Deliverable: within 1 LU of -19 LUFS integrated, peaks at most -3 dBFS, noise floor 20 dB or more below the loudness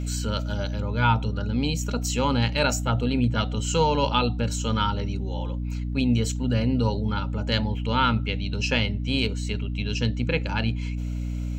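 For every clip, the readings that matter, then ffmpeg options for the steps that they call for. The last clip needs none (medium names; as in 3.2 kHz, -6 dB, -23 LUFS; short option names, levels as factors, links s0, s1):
hum 60 Hz; highest harmonic 300 Hz; hum level -26 dBFS; loudness -25.5 LUFS; peak level -8.5 dBFS; loudness target -19.0 LUFS
-> -af "bandreject=f=60:t=h:w=6,bandreject=f=120:t=h:w=6,bandreject=f=180:t=h:w=6,bandreject=f=240:t=h:w=6,bandreject=f=300:t=h:w=6"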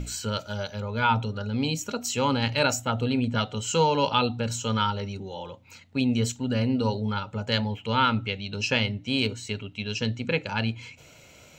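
hum not found; loudness -27.0 LUFS; peak level -9.0 dBFS; loudness target -19.0 LUFS
-> -af "volume=2.51,alimiter=limit=0.708:level=0:latency=1"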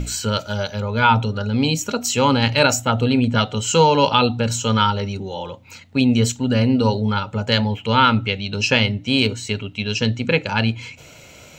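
loudness -19.0 LUFS; peak level -3.0 dBFS; noise floor -44 dBFS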